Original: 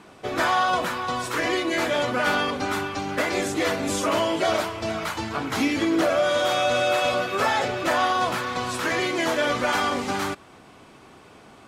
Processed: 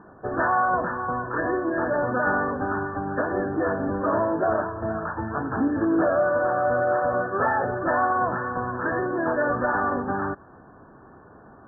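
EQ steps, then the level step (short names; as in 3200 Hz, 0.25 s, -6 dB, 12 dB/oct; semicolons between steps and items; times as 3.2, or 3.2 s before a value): brick-wall FIR low-pass 1800 Hz; low shelf 110 Hz +5 dB; 0.0 dB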